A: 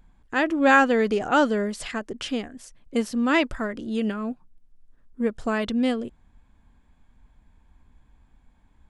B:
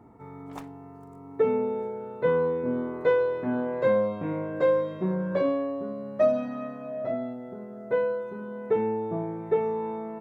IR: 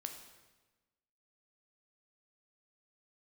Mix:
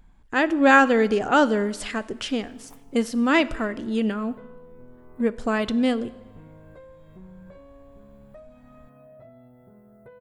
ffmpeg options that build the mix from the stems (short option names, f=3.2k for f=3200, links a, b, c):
-filter_complex "[0:a]volume=-1dB,asplit=3[a][b][c];[b]volume=-5.5dB[d];[1:a]acompressor=threshold=-34dB:ratio=4,asubboost=boost=9:cutoff=99,aexciter=amount=8.3:drive=3.7:freq=8.5k,adelay=2150,volume=-11.5dB[e];[c]apad=whole_len=544791[f];[e][f]sidechaincompress=threshold=-26dB:ratio=8:attack=16:release=311[g];[2:a]atrim=start_sample=2205[h];[d][h]afir=irnorm=-1:irlink=0[i];[a][g][i]amix=inputs=3:normalize=0"